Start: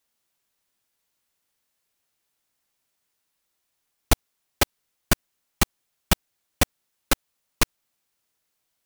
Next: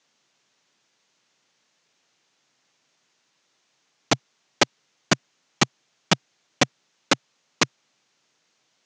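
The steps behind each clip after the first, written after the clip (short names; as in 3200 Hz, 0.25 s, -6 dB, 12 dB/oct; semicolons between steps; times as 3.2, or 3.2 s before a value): in parallel at -2 dB: negative-ratio compressor -22 dBFS, ratio -0.5; on the sum: Chebyshev band-pass 130–6600 Hz, order 4; gain +2 dB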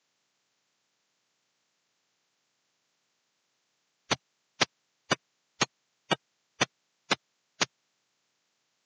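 bin magnitudes rounded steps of 30 dB; gain -6.5 dB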